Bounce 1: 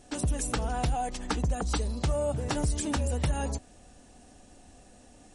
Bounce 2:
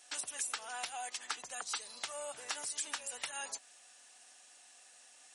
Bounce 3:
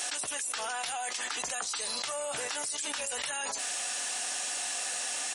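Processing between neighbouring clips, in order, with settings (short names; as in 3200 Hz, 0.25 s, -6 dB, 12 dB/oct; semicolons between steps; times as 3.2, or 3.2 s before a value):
HPF 1500 Hz 12 dB/oct; compressor 2:1, threshold -41 dBFS, peak gain reduction 6 dB; gain +2.5 dB
doubler 14 ms -14 dB; fast leveller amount 100%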